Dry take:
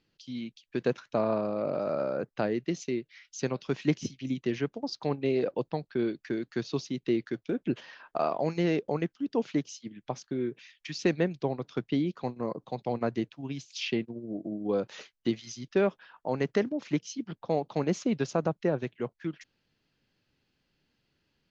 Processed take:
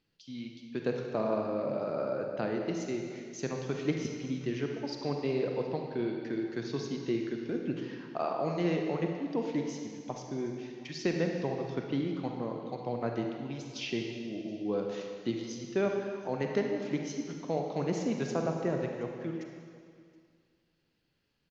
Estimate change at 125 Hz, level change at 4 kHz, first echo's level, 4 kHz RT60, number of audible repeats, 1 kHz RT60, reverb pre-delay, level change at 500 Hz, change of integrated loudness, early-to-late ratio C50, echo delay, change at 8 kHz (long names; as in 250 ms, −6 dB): −2.0 dB, −2.5 dB, −23.5 dB, 2.1 s, 1, 2.2 s, 34 ms, −2.5 dB, −2.5 dB, 2.5 dB, 723 ms, can't be measured